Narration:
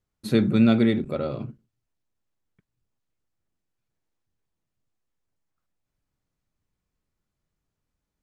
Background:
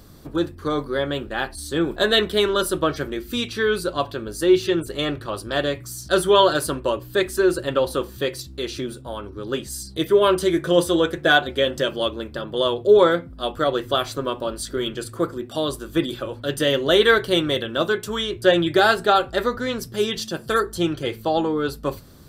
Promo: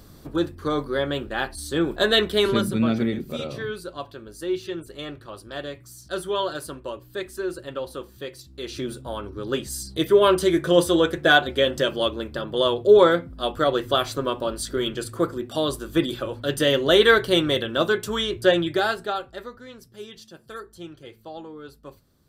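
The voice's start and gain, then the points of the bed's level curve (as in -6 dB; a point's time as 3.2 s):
2.20 s, -4.0 dB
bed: 2.5 s -1 dB
2.71 s -10.5 dB
8.42 s -10.5 dB
8.89 s 0 dB
18.37 s 0 dB
19.59 s -17 dB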